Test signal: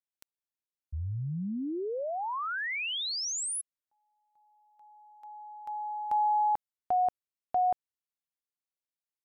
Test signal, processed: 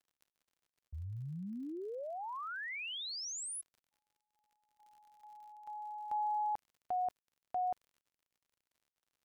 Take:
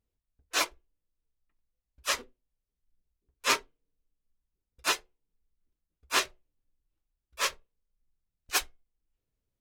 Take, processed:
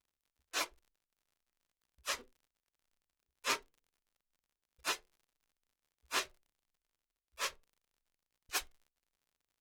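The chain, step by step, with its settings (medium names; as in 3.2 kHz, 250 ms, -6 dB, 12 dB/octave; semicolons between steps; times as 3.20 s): crackle 75 per s -47 dBFS; expander -60 dBFS, range -7 dB; trim -8.5 dB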